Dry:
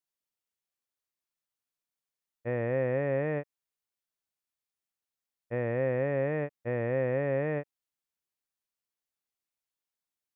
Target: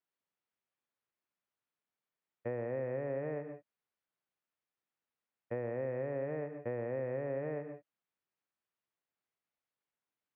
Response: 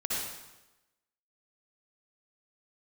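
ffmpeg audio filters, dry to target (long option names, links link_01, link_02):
-filter_complex "[0:a]highpass=100,lowpass=2400,asplit=2[link_01][link_02];[1:a]atrim=start_sample=2205,afade=type=out:start_time=0.19:duration=0.01,atrim=end_sample=8820,asetrate=33957,aresample=44100[link_03];[link_02][link_03]afir=irnorm=-1:irlink=0,volume=-15.5dB[link_04];[link_01][link_04]amix=inputs=2:normalize=0,acrossover=split=390|930[link_05][link_06][link_07];[link_05]acompressor=threshold=-45dB:ratio=4[link_08];[link_06]acompressor=threshold=-41dB:ratio=4[link_09];[link_07]acompressor=threshold=-56dB:ratio=4[link_10];[link_08][link_09][link_10]amix=inputs=3:normalize=0,volume=1.5dB"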